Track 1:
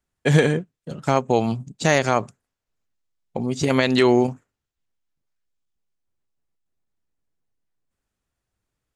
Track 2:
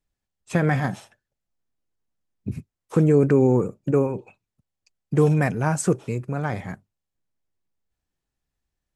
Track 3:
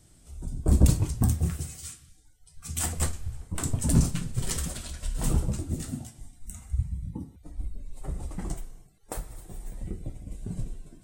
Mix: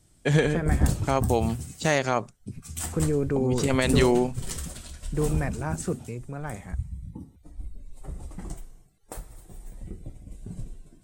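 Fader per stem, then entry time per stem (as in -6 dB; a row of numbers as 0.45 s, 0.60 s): -5.0 dB, -8.5 dB, -3.5 dB; 0.00 s, 0.00 s, 0.00 s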